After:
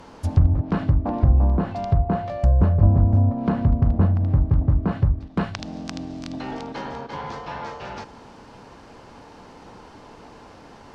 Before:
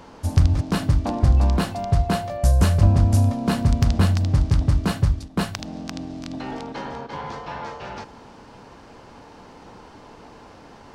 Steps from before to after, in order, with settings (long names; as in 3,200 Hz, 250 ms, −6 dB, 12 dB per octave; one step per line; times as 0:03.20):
treble cut that deepens with the level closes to 910 Hz, closed at −15.5 dBFS